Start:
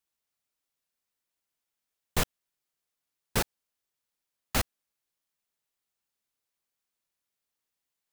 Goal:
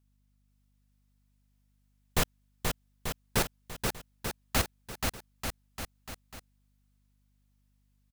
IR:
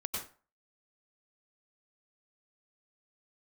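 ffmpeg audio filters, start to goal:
-af "aecho=1:1:480|888|1235|1530|1780:0.631|0.398|0.251|0.158|0.1,aeval=exprs='val(0)+0.000355*(sin(2*PI*50*n/s)+sin(2*PI*2*50*n/s)/2+sin(2*PI*3*50*n/s)/3+sin(2*PI*4*50*n/s)/4+sin(2*PI*5*50*n/s)/5)':c=same"

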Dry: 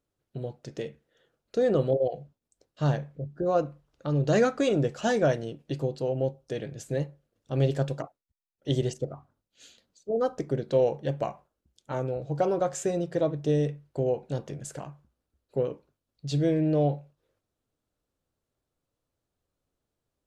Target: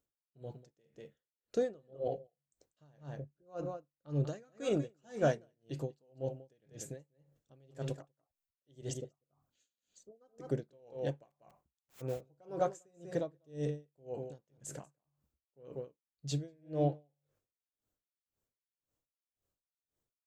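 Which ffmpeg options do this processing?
-filter_complex "[0:a]asplit=3[a][b][c];[a]afade=t=out:st=11.3:d=0.02[d];[b]aeval=exprs='(mod(56.2*val(0)+1,2)-1)/56.2':c=same,afade=t=in:st=11.3:d=0.02,afade=t=out:st=12:d=0.02[e];[c]afade=t=in:st=12:d=0.02[f];[d][e][f]amix=inputs=3:normalize=0,aexciter=amount=2.1:drive=3:freq=6.2k,asplit=2[g][h];[h]adelay=192.4,volume=-10dB,highshelf=f=4k:g=-4.33[i];[g][i]amix=inputs=2:normalize=0,asplit=3[j][k][l];[j]afade=t=out:st=9.1:d=0.02[m];[k]acompressor=threshold=-44dB:ratio=2,afade=t=in:st=9.1:d=0.02,afade=t=out:st=10.2:d=0.02[n];[l]afade=t=in:st=10.2:d=0.02[o];[m][n][o]amix=inputs=3:normalize=0,aeval=exprs='val(0)*pow(10,-36*(0.5-0.5*cos(2*PI*1.9*n/s))/20)':c=same,volume=-5dB"

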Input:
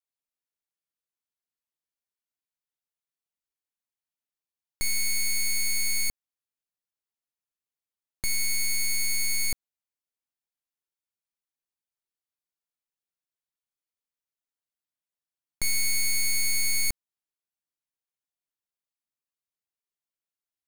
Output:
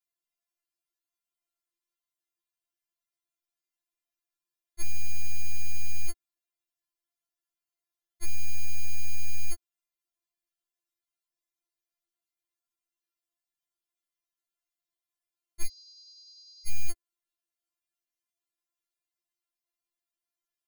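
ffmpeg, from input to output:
-filter_complex "[0:a]asoftclip=type=hard:threshold=-27dB,asettb=1/sr,asplit=3[a][b][c];[a]atrim=end=15.664[d];[b]atrim=start=15.66:end=16.68,asetpts=PTS-STARTPTS,afade=t=in:d=0.004:c=qsin,afade=t=out:st=1.016:d=0.004:c=qsin,asuperpass=centerf=4800:order=8:qfactor=2.7[e];[c]atrim=start=16.676[f];[d][e]acrossfade=d=0.004:c1=hsin:c2=qsin[g];[g][f]acrossfade=d=0.004:c1=qsin:c2=hsin,afftfilt=real='re*4*eq(mod(b,16),0)':imag='im*4*eq(mod(b,16),0)':win_size=2048:overlap=0.75,volume=2.5dB"

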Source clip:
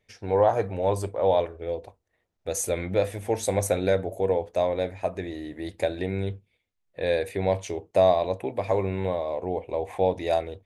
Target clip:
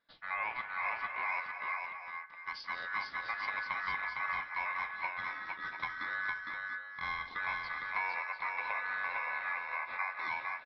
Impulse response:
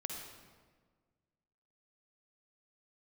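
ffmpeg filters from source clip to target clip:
-filter_complex "[0:a]asubboost=boost=8.5:cutoff=60,acompressor=threshold=-25dB:ratio=4,aeval=exprs='val(0)*sin(2*PI*1600*n/s)':c=same,aresample=11025,aresample=44100,asplit=2[a][b];[b]aecho=0:1:175|221|458|685|702:0.178|0.158|0.668|0.2|0.251[c];[a][c]amix=inputs=2:normalize=0,asplit=2[d][e];[e]asetrate=33038,aresample=44100,atempo=1.33484,volume=-15dB[f];[d][f]amix=inputs=2:normalize=0,volume=-6.5dB" -ar 24000 -c:a aac -b:a 48k

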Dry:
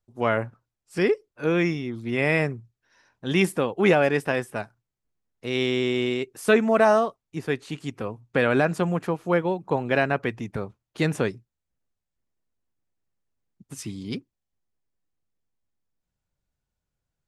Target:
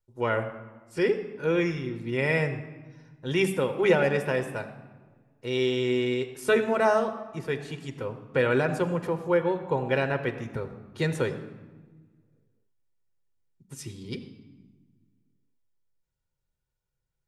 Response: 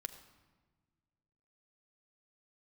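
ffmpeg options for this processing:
-filter_complex "[1:a]atrim=start_sample=2205[a];[0:a][a]afir=irnorm=-1:irlink=0"

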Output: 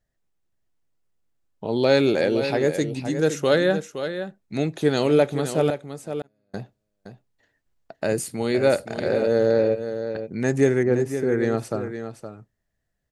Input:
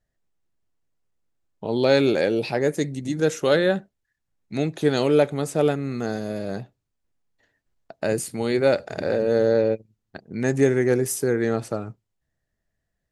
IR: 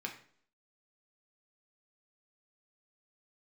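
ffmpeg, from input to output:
-filter_complex "[0:a]asettb=1/sr,asplit=3[a][b][c];[a]atrim=end=5.704[d];[b]atrim=start=5.7:end=6.54,asetpts=PTS-STARTPTS,afade=t=in:d=0.004:c=qsin,afade=t=out:st=0.836:d=0.004:c=qsin,agate=range=-42dB:threshold=-21dB:ratio=16:detection=peak[e];[c]atrim=start=6.536[f];[d][e]acrossfade=d=0.004:c1=hsin:c2=qsin[g];[g][f]acrossfade=d=0.004:c1=qsin:c2=hsin,asettb=1/sr,asplit=3[h][i][j];[h]atrim=end=10.834[k];[i]atrim=start=10.83:end=11.32,asetpts=PTS-STARTPTS,afade=t=in:d=0.004:c=qsin,afade=t=out:st=0.486:d=0.004:c=qsin,lowpass=f=1.1k:p=1[l];[j]atrim=start=11.316[m];[k][l]acrossfade=d=0.004:c1=hsin:c2=qsin[n];[n][m]acrossfade=d=0.004:c1=qsin:c2=hsin,aecho=1:1:517:0.335"

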